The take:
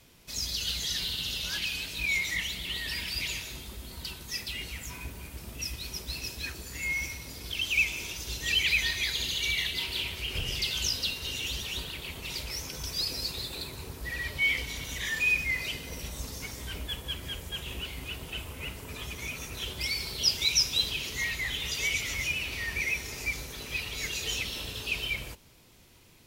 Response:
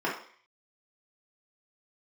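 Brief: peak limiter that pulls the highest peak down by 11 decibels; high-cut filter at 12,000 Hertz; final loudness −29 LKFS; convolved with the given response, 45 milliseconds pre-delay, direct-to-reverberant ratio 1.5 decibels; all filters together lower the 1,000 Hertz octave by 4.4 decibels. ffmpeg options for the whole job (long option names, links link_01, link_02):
-filter_complex "[0:a]lowpass=12000,equalizer=frequency=1000:width_type=o:gain=-5.5,alimiter=limit=-23dB:level=0:latency=1,asplit=2[link_01][link_02];[1:a]atrim=start_sample=2205,adelay=45[link_03];[link_02][link_03]afir=irnorm=-1:irlink=0,volume=-12.5dB[link_04];[link_01][link_04]amix=inputs=2:normalize=0,volume=3dB"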